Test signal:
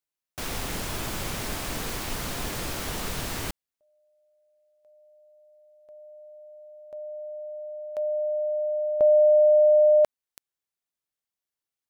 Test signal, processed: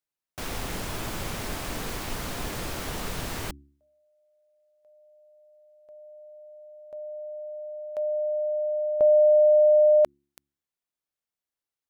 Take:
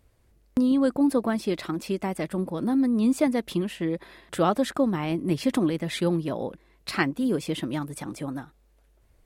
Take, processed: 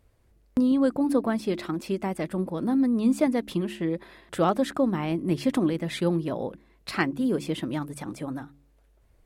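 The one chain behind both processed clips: high shelf 2500 Hz -3.5 dB; de-hum 70.7 Hz, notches 5; hard clip -11 dBFS

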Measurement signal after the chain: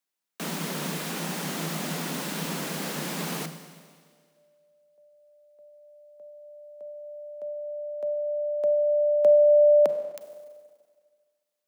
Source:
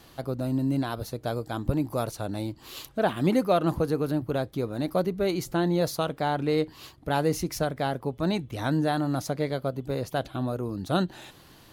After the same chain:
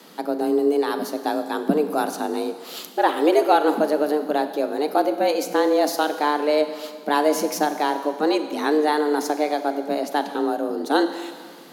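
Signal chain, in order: frequency shift +150 Hz; Schroeder reverb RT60 1.8 s, combs from 32 ms, DRR 9 dB; gain +5.5 dB

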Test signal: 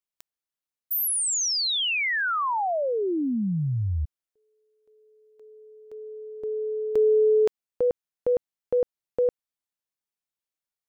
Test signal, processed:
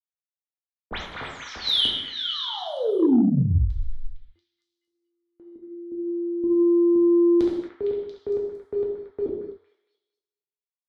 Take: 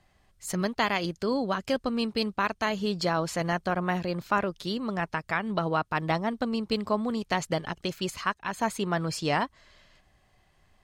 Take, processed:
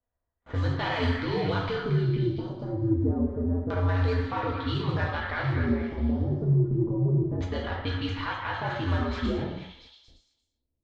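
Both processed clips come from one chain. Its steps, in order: median filter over 9 samples; bit-crush 12-bit; limiter -25 dBFS; LFO low-pass square 0.27 Hz 390–3800 Hz; non-linear reverb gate 0.29 s falling, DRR -2.5 dB; frequency shift -87 Hz; low-pass opened by the level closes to 1100 Hz, open at -22 dBFS; bell 2700 Hz -8.5 dB 0.28 oct; resonator 91 Hz, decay 0.87 s, harmonics odd, mix 40%; gate with hold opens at -52 dBFS, closes at -57 dBFS, hold 59 ms, range -24 dB; delay with a stepping band-pass 0.229 s, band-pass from 1600 Hz, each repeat 0.7 oct, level -3.5 dB; soft clip -15 dBFS; gain +5.5 dB

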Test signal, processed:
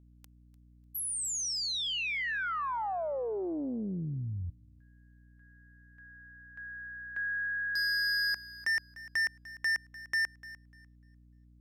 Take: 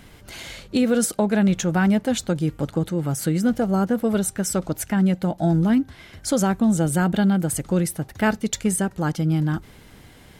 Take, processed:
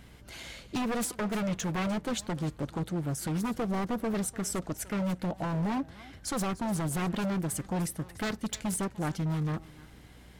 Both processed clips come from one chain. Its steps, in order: low shelf 110 Hz -3.5 dB; wavefolder -18 dBFS; hum 60 Hz, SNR 23 dB; thinning echo 0.298 s, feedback 22%, high-pass 340 Hz, level -17.5 dB; Doppler distortion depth 0.43 ms; gain -7 dB

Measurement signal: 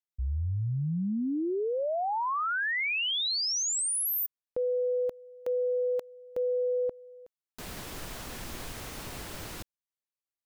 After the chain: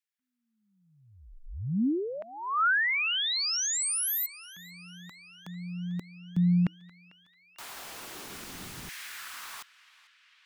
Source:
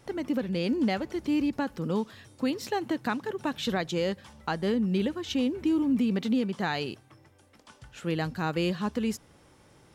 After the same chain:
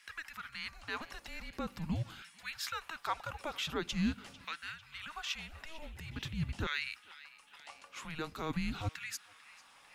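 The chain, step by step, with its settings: bell 870 Hz -9 dB 0.82 oct; limiter -26.5 dBFS; LFO high-pass saw down 0.45 Hz 420–2300 Hz; frequency shift -320 Hz; narrowing echo 0.447 s, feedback 81%, band-pass 2600 Hz, level -17 dB

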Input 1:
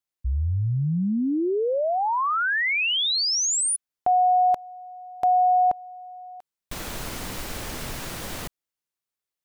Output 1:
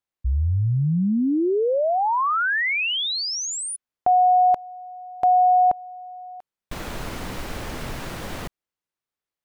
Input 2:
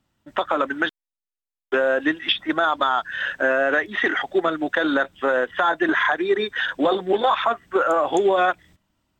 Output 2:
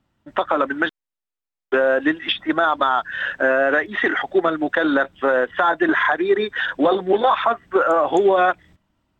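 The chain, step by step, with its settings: high shelf 4000 Hz -10.5 dB; gain +3 dB

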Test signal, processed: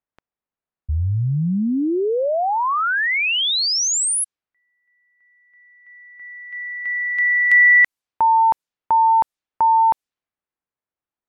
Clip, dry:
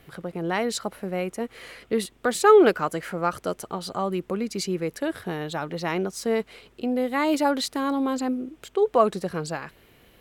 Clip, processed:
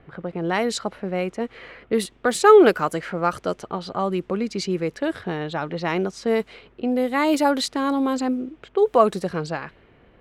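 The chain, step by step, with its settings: low-pass opened by the level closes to 1600 Hz, open at -20 dBFS; gain +3 dB

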